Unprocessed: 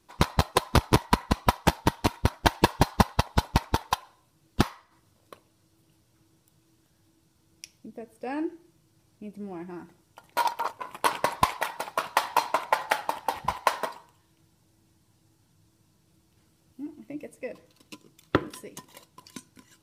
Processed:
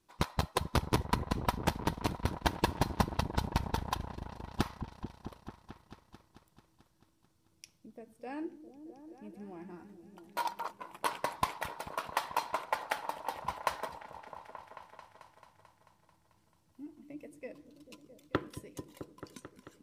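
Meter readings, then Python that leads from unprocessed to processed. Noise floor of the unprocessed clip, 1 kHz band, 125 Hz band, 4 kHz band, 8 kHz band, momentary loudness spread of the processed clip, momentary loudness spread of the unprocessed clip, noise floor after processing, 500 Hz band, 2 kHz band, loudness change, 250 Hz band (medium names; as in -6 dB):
-66 dBFS, -8.5 dB, -7.5 dB, -9.0 dB, -9.0 dB, 20 LU, 19 LU, -71 dBFS, -8.5 dB, -9.0 dB, -9.0 dB, -8.0 dB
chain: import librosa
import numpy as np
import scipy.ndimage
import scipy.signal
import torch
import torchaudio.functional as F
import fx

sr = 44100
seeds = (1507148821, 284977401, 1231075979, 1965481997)

y = fx.echo_opening(x, sr, ms=220, hz=200, octaves=1, feedback_pct=70, wet_db=-6)
y = y * librosa.db_to_amplitude(-9.0)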